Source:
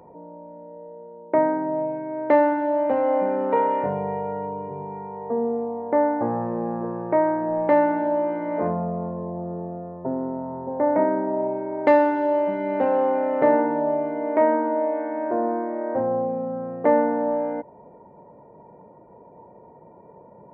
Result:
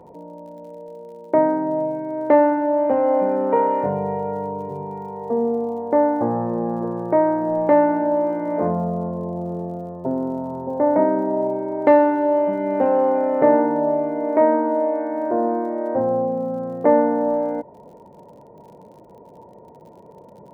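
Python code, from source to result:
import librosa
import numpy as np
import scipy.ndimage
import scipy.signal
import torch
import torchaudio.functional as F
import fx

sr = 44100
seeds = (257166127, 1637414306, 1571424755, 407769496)

y = fx.high_shelf(x, sr, hz=2000.0, db=-11.5)
y = fx.dmg_crackle(y, sr, seeds[0], per_s=60.0, level_db=-48.0)
y = y * 10.0 ** (4.0 / 20.0)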